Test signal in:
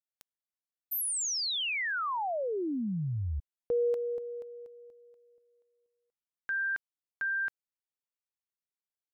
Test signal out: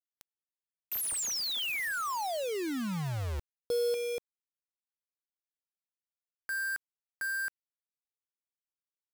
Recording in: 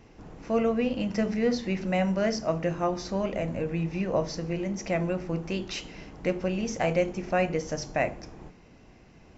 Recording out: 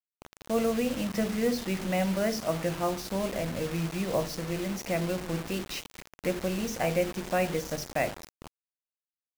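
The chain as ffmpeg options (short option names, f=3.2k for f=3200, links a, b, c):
-af "acrusher=bits=5:mix=0:aa=0.000001,volume=-2dB"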